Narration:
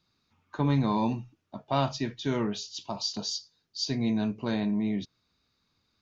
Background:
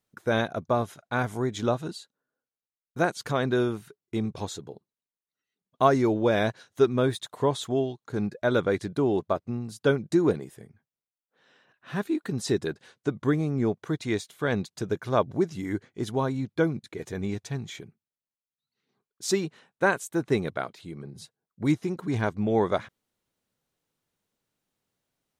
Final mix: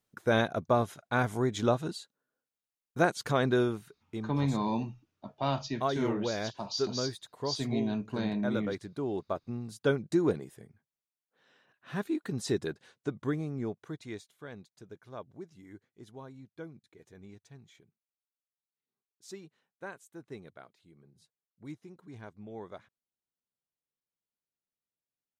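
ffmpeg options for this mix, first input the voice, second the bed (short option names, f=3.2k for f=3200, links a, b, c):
-filter_complex "[0:a]adelay=3700,volume=-4dB[a];[1:a]volume=5dB,afade=t=out:st=3.45:d=0.82:silence=0.334965,afade=t=in:st=8.95:d=0.8:silence=0.501187,afade=t=out:st=12.62:d=1.93:silence=0.16788[b];[a][b]amix=inputs=2:normalize=0"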